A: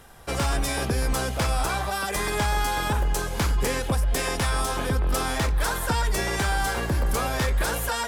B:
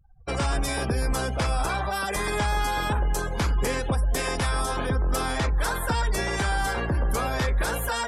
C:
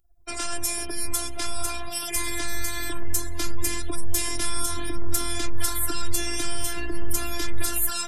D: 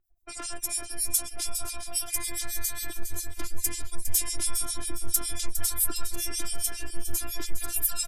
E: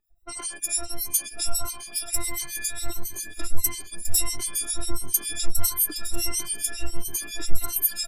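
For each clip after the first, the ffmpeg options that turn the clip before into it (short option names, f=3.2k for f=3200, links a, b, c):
-filter_complex "[0:a]afftfilt=real='re*gte(hypot(re,im),0.00562)':imag='im*gte(hypot(re,im),0.00562)':win_size=1024:overlap=0.75,afftdn=nr=35:nf=-38,asplit=2[a][b];[b]alimiter=limit=-23.5dB:level=0:latency=1,volume=-1.5dB[c];[a][c]amix=inputs=2:normalize=0,volume=-3.5dB"
-af "crystalizer=i=5:c=0,asubboost=boost=6:cutoff=230,afftfilt=real='hypot(re,im)*cos(PI*b)':imag='0':win_size=512:overlap=0.75,volume=-4.5dB"
-filter_complex "[0:a]crystalizer=i=1.5:c=0,acrossover=split=2400[a][b];[a]aeval=exprs='val(0)*(1-1/2+1/2*cos(2*PI*7.3*n/s))':c=same[c];[b]aeval=exprs='val(0)*(1-1/2-1/2*cos(2*PI*7.3*n/s))':c=same[d];[c][d]amix=inputs=2:normalize=0,asplit=2[e][f];[f]aecho=0:1:408|816|1224|1632:0.316|0.111|0.0387|0.0136[g];[e][g]amix=inputs=2:normalize=0,volume=-4.5dB"
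-af "afftfilt=real='re*pow(10,23/40*sin(2*PI*(2*log(max(b,1)*sr/1024/100)/log(2)-(1.5)*(pts-256)/sr)))':imag='im*pow(10,23/40*sin(2*PI*(2*log(max(b,1)*sr/1024/100)/log(2)-(1.5)*(pts-256)/sr)))':win_size=1024:overlap=0.75,volume=-2.5dB"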